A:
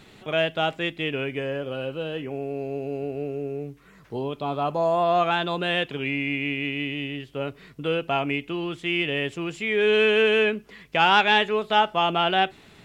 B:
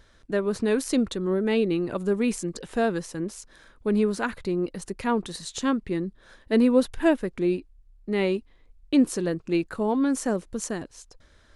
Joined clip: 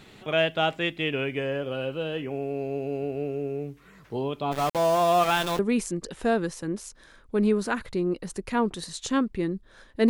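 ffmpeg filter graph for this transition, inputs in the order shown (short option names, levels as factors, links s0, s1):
-filter_complex "[0:a]asplit=3[s0][s1][s2];[s0]afade=t=out:st=4.51:d=0.02[s3];[s1]aeval=exprs='val(0)*gte(abs(val(0)),0.0376)':c=same,afade=t=in:st=4.51:d=0.02,afade=t=out:st=5.59:d=0.02[s4];[s2]afade=t=in:st=5.59:d=0.02[s5];[s3][s4][s5]amix=inputs=3:normalize=0,apad=whole_dur=10.09,atrim=end=10.09,atrim=end=5.592[s6];[1:a]atrim=start=2.108:end=6.61[s7];[s6][s7]acrossfade=d=0.004:c1=hsin:c2=hsin"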